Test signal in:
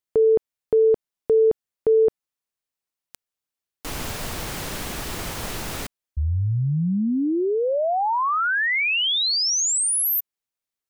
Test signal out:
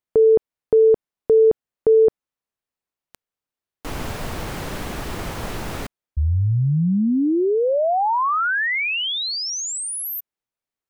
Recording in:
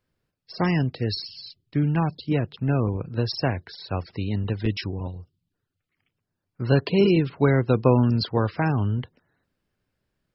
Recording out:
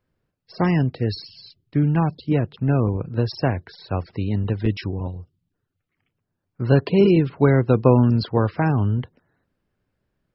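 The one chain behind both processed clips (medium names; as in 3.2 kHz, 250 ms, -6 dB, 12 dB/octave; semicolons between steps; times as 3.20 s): treble shelf 2.7 kHz -10 dB; trim +3.5 dB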